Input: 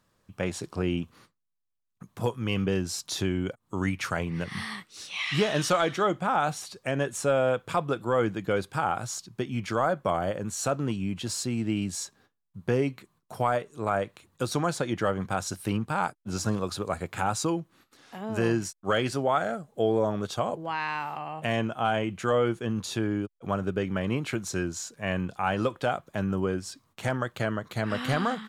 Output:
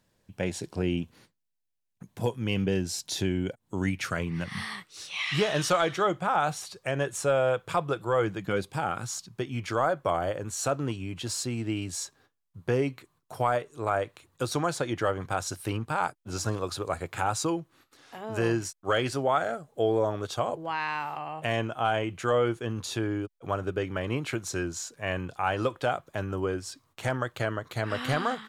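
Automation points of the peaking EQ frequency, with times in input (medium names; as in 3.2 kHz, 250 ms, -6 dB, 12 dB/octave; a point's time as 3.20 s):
peaking EQ -12.5 dB 0.32 oct
3.99 s 1.2 kHz
4.69 s 240 Hz
8.40 s 240 Hz
8.67 s 1.7 kHz
9.45 s 200 Hz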